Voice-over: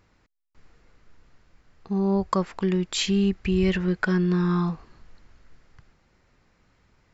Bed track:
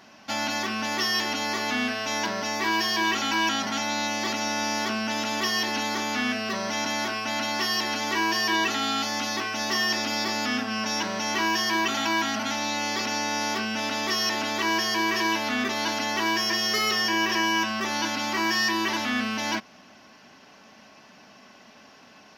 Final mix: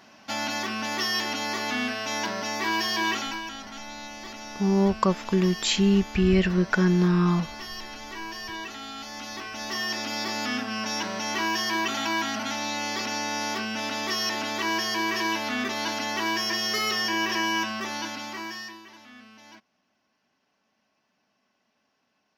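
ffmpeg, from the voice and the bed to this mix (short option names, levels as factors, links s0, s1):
-filter_complex "[0:a]adelay=2700,volume=1.19[s0];[1:a]volume=2.66,afade=t=out:st=3.12:d=0.3:silence=0.298538,afade=t=in:st=8.94:d=1.5:silence=0.316228,afade=t=out:st=17.58:d=1.24:silence=0.1[s1];[s0][s1]amix=inputs=2:normalize=0"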